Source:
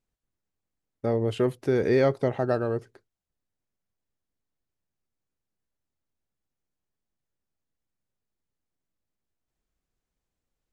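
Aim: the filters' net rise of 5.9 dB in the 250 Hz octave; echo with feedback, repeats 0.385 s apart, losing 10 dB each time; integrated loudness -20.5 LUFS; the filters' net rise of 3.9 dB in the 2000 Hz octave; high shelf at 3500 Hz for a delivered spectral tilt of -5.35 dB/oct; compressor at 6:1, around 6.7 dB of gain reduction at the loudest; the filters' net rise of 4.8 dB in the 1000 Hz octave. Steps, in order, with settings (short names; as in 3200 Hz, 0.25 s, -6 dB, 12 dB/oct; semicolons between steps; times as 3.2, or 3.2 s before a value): bell 250 Hz +7 dB; bell 1000 Hz +6 dB; bell 2000 Hz +4 dB; high shelf 3500 Hz -5.5 dB; compressor 6:1, threshold -21 dBFS; feedback echo 0.385 s, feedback 32%, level -10 dB; gain +7 dB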